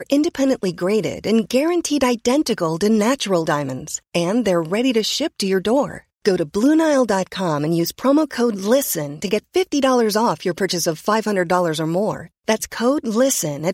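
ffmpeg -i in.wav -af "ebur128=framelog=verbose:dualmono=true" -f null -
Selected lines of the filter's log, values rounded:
Integrated loudness:
  I:         -16.2 LUFS
  Threshold: -26.2 LUFS
Loudness range:
  LRA:         1.2 LU
  Threshold: -36.1 LUFS
  LRA low:   -16.8 LUFS
  LRA high:  -15.6 LUFS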